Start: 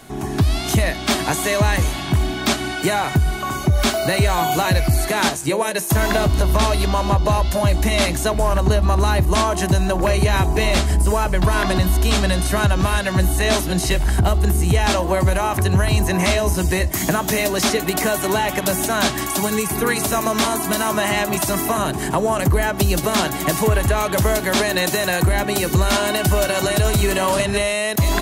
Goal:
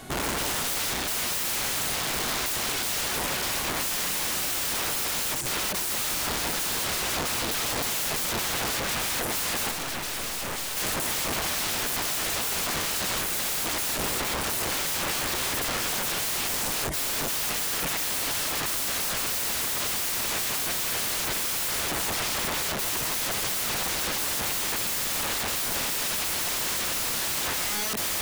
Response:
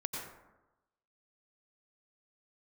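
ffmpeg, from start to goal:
-filter_complex "[0:a]aeval=exprs='(mod(15*val(0)+1,2)-1)/15':c=same,asettb=1/sr,asplit=3[s0][s1][s2];[s0]atrim=end=9.714[s3];[s1]atrim=start=9.71:end=10.77,asetpts=PTS-STARTPTS,afade=t=in:d=0.004:c=qsin,afade=t=out:st=1.056:d=0.004:c=qsin,aeval=exprs='(tanh(25.1*val(0)+0.55)-tanh(0.55))/25.1':c=same[s4];[s2]atrim=start=10.766[s5];[s3][s4]acrossfade=d=0.004:c1=hsin:c2=qsin[s6];[s6][s5]acrossfade=d=0.004:c1=qsin:c2=hsin"

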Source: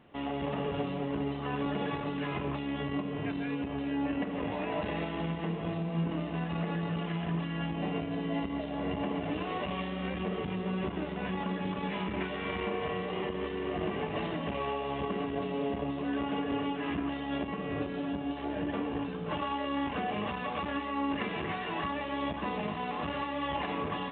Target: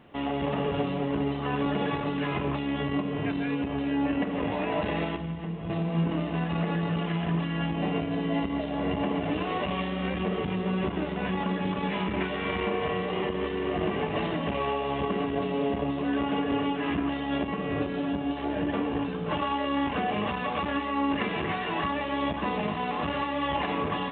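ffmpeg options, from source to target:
-filter_complex "[0:a]asettb=1/sr,asplit=3[s0][s1][s2];[s0]atrim=end=5.164[s3];[s1]atrim=start=5.16:end=5.7,asetpts=PTS-STARTPTS,afade=t=in:d=0.004:c=qsin,afade=t=out:st=0.536:d=0.004:c=qsin,acrossover=split=160[s4][s5];[s5]acompressor=threshold=0.00112:ratio=1.5[s6];[s4][s6]amix=inputs=2:normalize=0[s7];[s2]atrim=start=5.696[s8];[s3][s7]acrossfade=d=0.004:c1=hsin:c2=qsin[s9];[s9][s8]acrossfade=d=0.004:c1=qsin:c2=hsin,volume=1.78"

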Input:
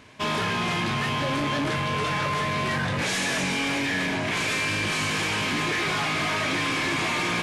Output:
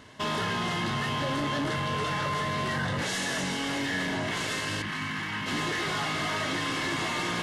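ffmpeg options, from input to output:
-filter_complex "[0:a]asettb=1/sr,asplit=3[s0][s1][s2];[s0]atrim=end=4.824[s3];[s1]atrim=start=4.82:end=5.46,asetpts=PTS-STARTPTS,afade=t=in:d=0.004:c=qsin,afade=t=out:st=0.636:d=0.004:c=qsin,equalizer=f=125:t=o:w=1:g=5,equalizer=f=250:t=o:w=1:g=10,equalizer=f=500:t=o:w=1:g=-9,equalizer=f=1000:t=o:w=1:g=6,equalizer=f=2000:t=o:w=1:g=9,equalizer=f=8000:t=o:w=1:g=-6[s4];[s2]atrim=start=5.456[s5];[s3][s4]acrossfade=d=0.004:c1=hsin:c2=qsin[s6];[s6][s5]acrossfade=d=0.004:c1=qsin:c2=hsin,alimiter=level_in=1.12:limit=0.0631:level=0:latency=1,volume=0.891,asuperstop=centerf=2400:order=4:qfactor=7.1"

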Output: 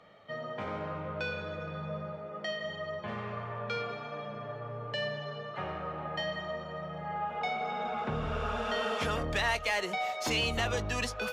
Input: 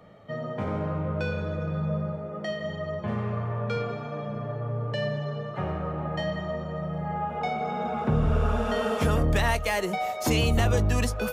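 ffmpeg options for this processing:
-filter_complex "[0:a]equalizer=f=4200:t=o:w=2.3:g=8,asplit=2[s0][s1];[s1]highpass=f=720:p=1,volume=3.16,asoftclip=type=tanh:threshold=0.335[s2];[s0][s2]amix=inputs=2:normalize=0,lowpass=f=3100:p=1,volume=0.501,volume=0.376"

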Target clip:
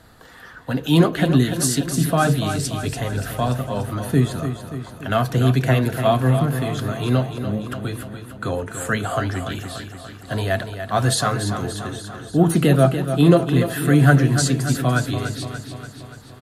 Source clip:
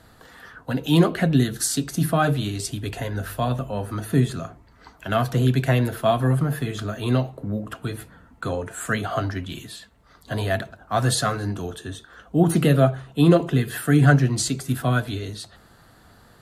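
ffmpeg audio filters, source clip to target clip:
-af "aecho=1:1:290|580|870|1160|1450|1740|2030:0.355|0.213|0.128|0.0766|0.046|0.0276|0.0166,volume=1.26"

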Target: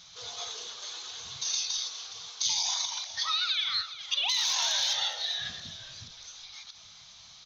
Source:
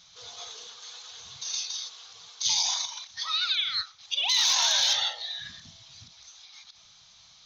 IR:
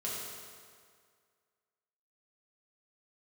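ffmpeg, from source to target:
-filter_complex "[0:a]acompressor=threshold=0.0316:ratio=4,asplit=4[s0][s1][s2][s3];[s1]adelay=415,afreqshift=-110,volume=0.2[s4];[s2]adelay=830,afreqshift=-220,volume=0.0617[s5];[s3]adelay=1245,afreqshift=-330,volume=0.0193[s6];[s0][s4][s5][s6]amix=inputs=4:normalize=0,asplit=2[s7][s8];[1:a]atrim=start_sample=2205[s9];[s8][s9]afir=irnorm=-1:irlink=0,volume=0.075[s10];[s7][s10]amix=inputs=2:normalize=0,volume=1.41"

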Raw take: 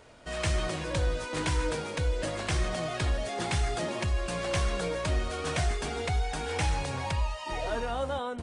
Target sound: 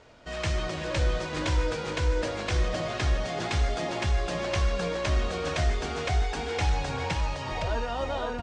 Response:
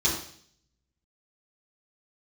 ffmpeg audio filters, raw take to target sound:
-filter_complex "[0:a]lowpass=f=6900:w=0.5412,lowpass=f=6900:w=1.3066,asplit=2[s0][s1];[s1]aecho=0:1:510:0.708[s2];[s0][s2]amix=inputs=2:normalize=0"

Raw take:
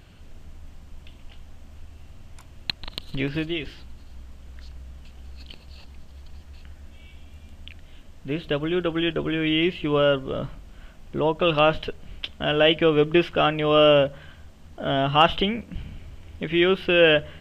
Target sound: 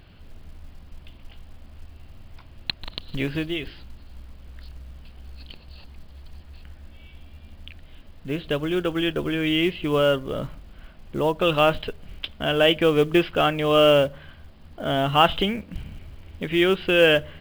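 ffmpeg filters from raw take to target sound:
-af "aresample=11025,aresample=44100,acrusher=bits=7:mode=log:mix=0:aa=0.000001"

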